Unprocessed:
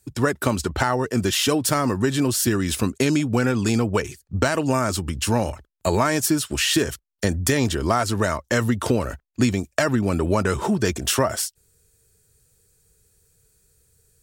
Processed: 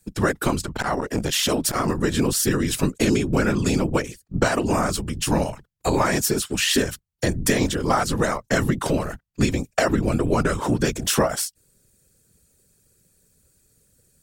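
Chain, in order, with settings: whisper effect; 0.59–1.88 s: transformer saturation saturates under 340 Hz

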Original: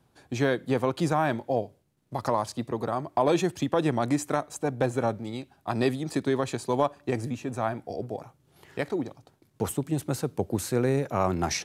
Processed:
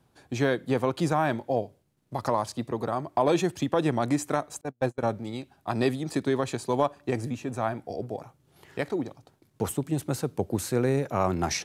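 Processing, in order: 4.61–5.03 s: gate -24 dBFS, range -39 dB

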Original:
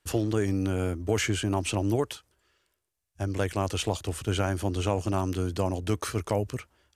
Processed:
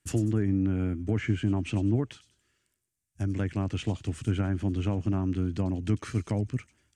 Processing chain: low-pass that closes with the level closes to 1.8 kHz, closed at -22 dBFS; graphic EQ 125/250/500/1000/2000/4000/8000 Hz +8/+9/-6/-5/+4/-4/+8 dB; feedback echo behind a high-pass 96 ms, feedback 34%, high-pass 4.5 kHz, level -8.5 dB; trim -5 dB

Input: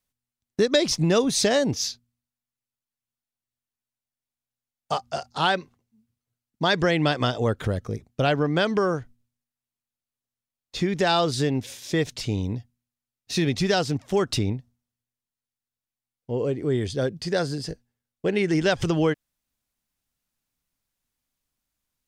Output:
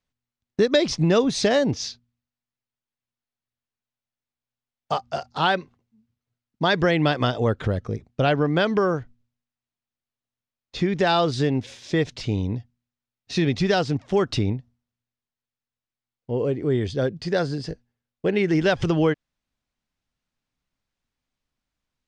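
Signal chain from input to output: distance through air 110 m; trim +2 dB

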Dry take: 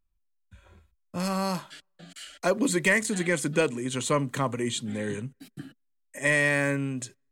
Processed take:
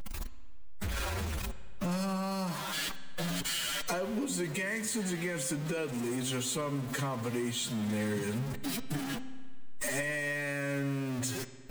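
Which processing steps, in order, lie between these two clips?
jump at every zero crossing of -29 dBFS; de-hum 261.7 Hz, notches 32; peak limiter -17 dBFS, peak gain reduction 7.5 dB; compression, threshold -33 dBFS, peak gain reduction 11 dB; time stretch by phase-locked vocoder 1.6×; spring tank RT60 1.9 s, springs 57 ms, chirp 40 ms, DRR 14.5 dB; trim +1.5 dB

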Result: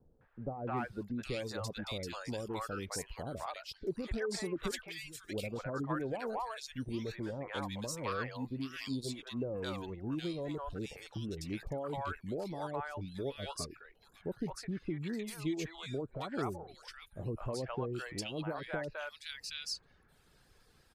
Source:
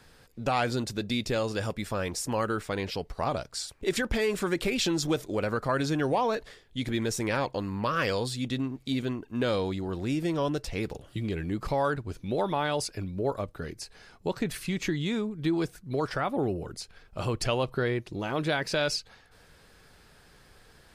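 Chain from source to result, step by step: reverb removal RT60 0.7 s; 4.71–5.24 s: amplifier tone stack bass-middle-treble 10-0-1; three bands offset in time lows, mids, highs 210/770 ms, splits 660/2000 Hz; trim -7 dB

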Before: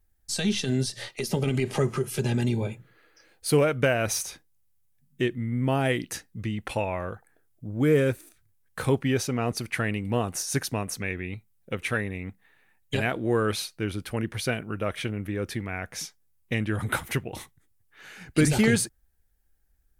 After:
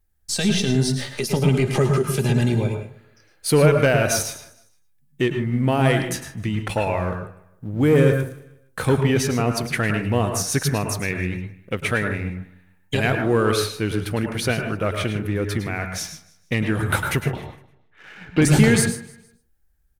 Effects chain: 17.17–18.42 s: low-pass 3.3 kHz 24 dB/octave; waveshaping leveller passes 1; feedback delay 154 ms, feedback 38%, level -20 dB; reverberation RT60 0.30 s, pre-delay 98 ms, DRR 5 dB; trim +1.5 dB

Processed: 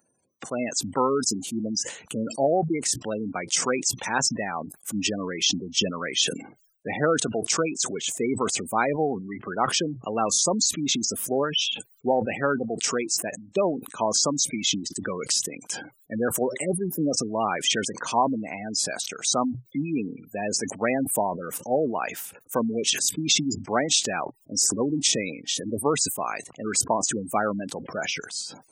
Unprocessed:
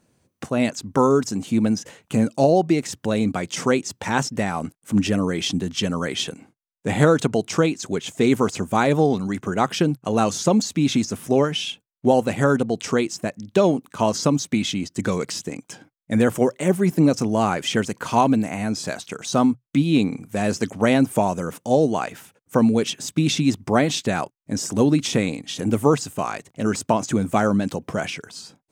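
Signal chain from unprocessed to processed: spectral gate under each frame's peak -20 dB strong; RIAA curve recording; decay stretcher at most 98 dB/s; trim -3 dB

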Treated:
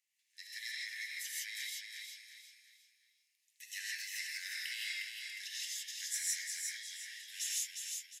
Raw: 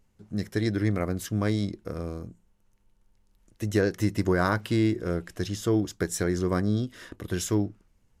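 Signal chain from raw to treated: steep high-pass 1.8 kHz 96 dB/octave; on a send: feedback delay 357 ms, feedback 36%, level -5 dB; on the sum: gated-style reverb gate 190 ms rising, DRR -5 dB; trim -6.5 dB

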